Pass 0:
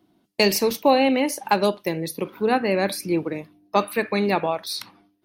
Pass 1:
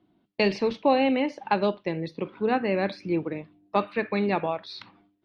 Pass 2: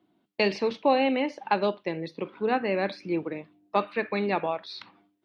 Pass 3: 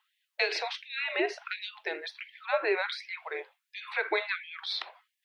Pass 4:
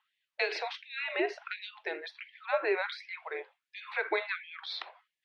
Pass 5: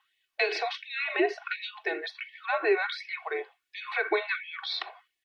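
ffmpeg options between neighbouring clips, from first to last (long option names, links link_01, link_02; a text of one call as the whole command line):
ffmpeg -i in.wav -af "lowpass=frequency=3800:width=0.5412,lowpass=frequency=3800:width=1.3066,lowshelf=frequency=190:gain=4,volume=-4.5dB" out.wav
ffmpeg -i in.wav -af "highpass=frequency=250:poles=1" out.wav
ffmpeg -i in.wav -af "afreqshift=-180,alimiter=limit=-21.5dB:level=0:latency=1:release=70,afftfilt=real='re*gte(b*sr/1024,320*pow(1700/320,0.5+0.5*sin(2*PI*1.4*pts/sr)))':imag='im*gte(b*sr/1024,320*pow(1700/320,0.5+0.5*sin(2*PI*1.4*pts/sr)))':win_size=1024:overlap=0.75,volume=7dB" out.wav
ffmpeg -i in.wav -af "aemphasis=mode=reproduction:type=50fm,volume=-1.5dB" out.wav
ffmpeg -i in.wav -filter_complex "[0:a]aecho=1:1:2.7:0.71,asplit=2[link_01][link_02];[link_02]acompressor=threshold=-36dB:ratio=6,volume=-2dB[link_03];[link_01][link_03]amix=inputs=2:normalize=0" out.wav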